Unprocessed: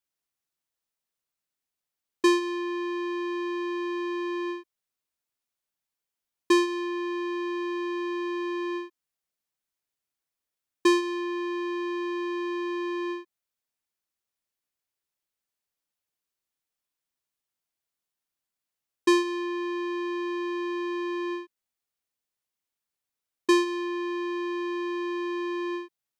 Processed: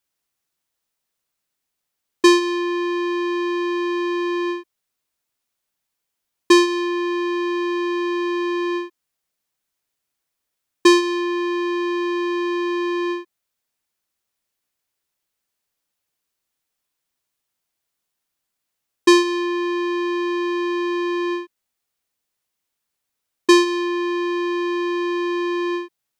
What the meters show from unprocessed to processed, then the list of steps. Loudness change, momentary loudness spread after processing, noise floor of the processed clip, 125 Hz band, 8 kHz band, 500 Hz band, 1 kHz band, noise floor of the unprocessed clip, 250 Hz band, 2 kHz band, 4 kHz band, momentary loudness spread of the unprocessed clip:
+8.0 dB, 9 LU, -80 dBFS, no reading, +10.5 dB, +8.0 dB, +8.0 dB, under -85 dBFS, +8.0 dB, +8.5 dB, +10.5 dB, 9 LU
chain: dynamic bell 4.8 kHz, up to +4 dB, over -44 dBFS, Q 1.1; trim +8 dB

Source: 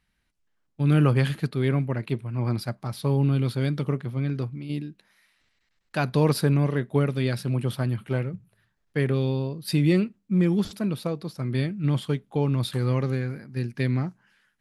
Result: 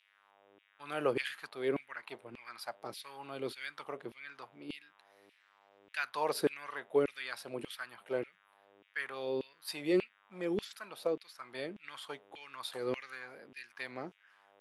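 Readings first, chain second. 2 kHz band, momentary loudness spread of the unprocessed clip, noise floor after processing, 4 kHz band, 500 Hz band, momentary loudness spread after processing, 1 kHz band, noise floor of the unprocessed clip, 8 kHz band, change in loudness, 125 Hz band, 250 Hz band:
-5.0 dB, 10 LU, -70 dBFS, -7.5 dB, -7.0 dB, 16 LU, -6.5 dB, -73 dBFS, -8.5 dB, -13.0 dB, -31.0 dB, -16.0 dB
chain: mains buzz 100 Hz, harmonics 38, -53 dBFS -6 dB/octave; LFO high-pass saw down 1.7 Hz 330–2700 Hz; trim -8.5 dB

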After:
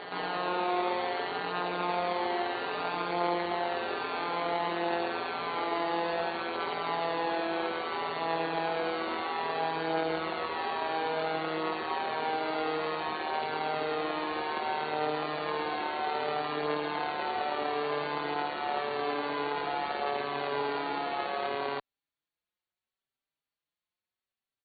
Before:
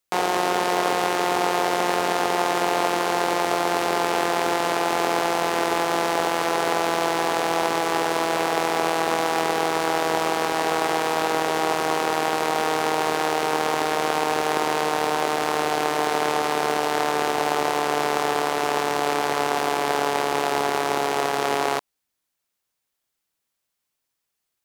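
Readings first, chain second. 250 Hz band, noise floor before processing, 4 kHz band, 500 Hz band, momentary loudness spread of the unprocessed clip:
-9.0 dB, -80 dBFS, -10.0 dB, -9.0 dB, 1 LU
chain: brick-wall FIR low-pass 4.6 kHz; reverse echo 322 ms -6.5 dB; endless flanger 4.6 ms +0.73 Hz; trim -7 dB

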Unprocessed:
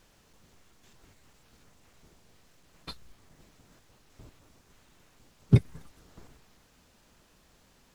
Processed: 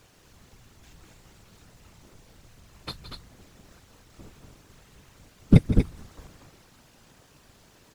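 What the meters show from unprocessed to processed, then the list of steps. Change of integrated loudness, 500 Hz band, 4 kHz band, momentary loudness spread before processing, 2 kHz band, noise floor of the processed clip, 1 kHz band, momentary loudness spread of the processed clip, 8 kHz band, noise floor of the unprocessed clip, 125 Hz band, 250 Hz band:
+3.5 dB, +5.5 dB, +6.5 dB, 21 LU, +6.5 dB, -58 dBFS, +7.0 dB, 22 LU, no reading, -64 dBFS, +3.5 dB, +8.5 dB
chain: loudspeakers at several distances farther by 57 m -12 dB, 82 m -6 dB; whisper effect; trim +5 dB

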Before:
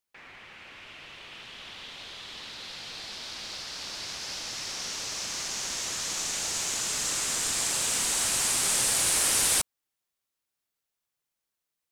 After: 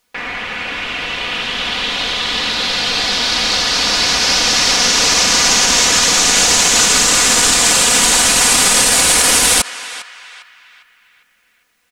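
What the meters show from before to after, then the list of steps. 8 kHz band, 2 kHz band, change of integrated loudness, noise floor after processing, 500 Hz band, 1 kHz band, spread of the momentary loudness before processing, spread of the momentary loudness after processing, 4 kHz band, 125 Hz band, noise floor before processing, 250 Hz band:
+15.5 dB, +20.5 dB, +16.0 dB, -58 dBFS, +20.0 dB, +20.5 dB, 21 LU, 12 LU, +19.5 dB, +17.5 dB, -85 dBFS, +21.5 dB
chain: treble shelf 7.3 kHz -8.5 dB; comb 4.1 ms, depth 51%; band-passed feedback delay 403 ms, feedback 46%, band-pass 1.9 kHz, level -20 dB; loudness maximiser +25 dB; trim -1 dB

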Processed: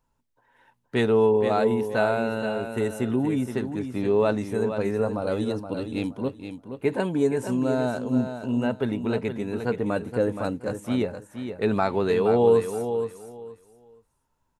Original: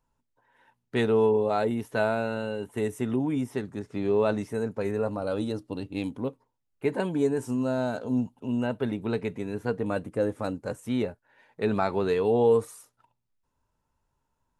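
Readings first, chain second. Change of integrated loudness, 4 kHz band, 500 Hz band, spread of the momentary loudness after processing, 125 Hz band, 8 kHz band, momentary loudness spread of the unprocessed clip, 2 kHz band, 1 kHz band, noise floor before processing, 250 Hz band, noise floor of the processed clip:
+3.0 dB, +3.0 dB, +3.0 dB, 10 LU, +3.0 dB, +3.0 dB, 10 LU, +3.0 dB, +3.0 dB, -79 dBFS, +3.0 dB, -73 dBFS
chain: feedback delay 472 ms, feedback 21%, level -8.5 dB; trim +2.5 dB

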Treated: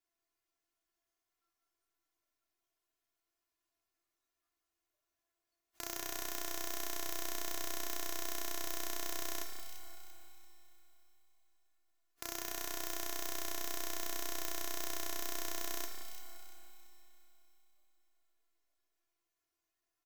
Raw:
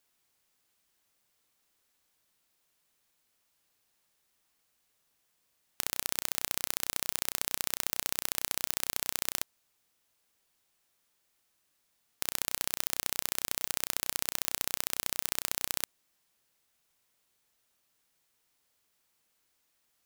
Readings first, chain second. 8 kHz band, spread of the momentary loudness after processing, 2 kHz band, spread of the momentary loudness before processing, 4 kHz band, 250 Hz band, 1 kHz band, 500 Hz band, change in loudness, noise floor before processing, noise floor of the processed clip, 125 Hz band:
-7.5 dB, 12 LU, -5.5 dB, 3 LU, -7.0 dB, 0.0 dB, -2.0 dB, +0.5 dB, -7.5 dB, -76 dBFS, under -85 dBFS, -5.5 dB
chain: spectral noise reduction 21 dB; treble shelf 3.7 kHz -7 dB; comb 2.8 ms, depth 92%; in parallel at -1 dB: compressor with a negative ratio -43 dBFS; on the sum: peak limiter -15 dBFS, peak gain reduction 10 dB; feedback comb 340 Hz, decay 0.26 s, harmonics all, mix 80%; on a send: echo whose repeats swap between lows and highs 171 ms, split 2 kHz, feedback 59%, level -7.5 dB; on the sum: Schroeder reverb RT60 3.5 s, combs from 31 ms, DRR 6.5 dB; trim +10 dB

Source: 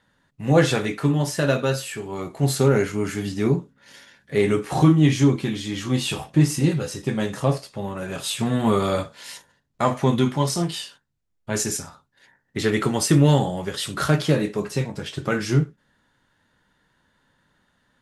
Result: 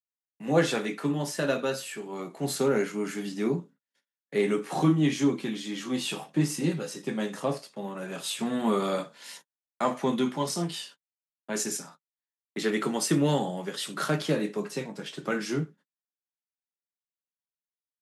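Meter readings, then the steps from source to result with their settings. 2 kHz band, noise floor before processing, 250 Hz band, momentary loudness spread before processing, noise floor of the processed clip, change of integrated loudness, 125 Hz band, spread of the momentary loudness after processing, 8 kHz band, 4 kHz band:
-5.5 dB, -70 dBFS, -6.0 dB, 12 LU, under -85 dBFS, -7.0 dB, -12.5 dB, 12 LU, -5.5 dB, -5.5 dB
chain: gate -42 dBFS, range -43 dB; steep high-pass 160 Hz 48 dB/octave; trim -5.5 dB

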